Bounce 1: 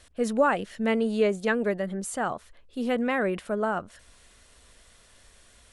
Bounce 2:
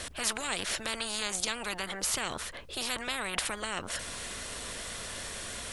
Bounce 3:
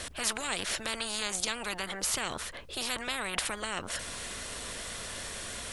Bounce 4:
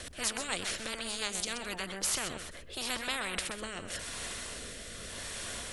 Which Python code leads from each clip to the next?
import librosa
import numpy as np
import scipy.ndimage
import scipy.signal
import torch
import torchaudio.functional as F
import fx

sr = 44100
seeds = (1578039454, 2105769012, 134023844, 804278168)

y1 = fx.spectral_comp(x, sr, ratio=10.0)
y2 = y1
y3 = fx.rotary_switch(y2, sr, hz=7.0, then_hz=0.85, switch_at_s=1.31)
y3 = y3 + 10.0 ** (-9.5 / 20.0) * np.pad(y3, (int(128 * sr / 1000.0), 0))[:len(y3)]